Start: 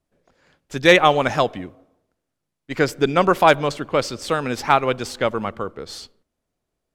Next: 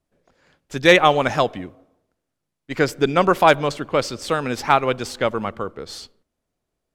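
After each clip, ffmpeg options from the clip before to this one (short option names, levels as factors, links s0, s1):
-af anull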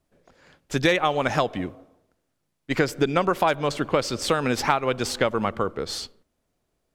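-af "acompressor=threshold=0.0794:ratio=6,volume=1.58"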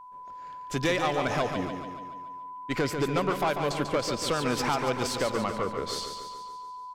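-filter_complex "[0:a]aeval=exprs='val(0)+0.00891*sin(2*PI*1000*n/s)':c=same,asoftclip=type=tanh:threshold=0.141,asplit=2[s0][s1];[s1]aecho=0:1:143|286|429|572|715|858|1001:0.447|0.25|0.14|0.0784|0.0439|0.0246|0.0138[s2];[s0][s2]amix=inputs=2:normalize=0,volume=0.708"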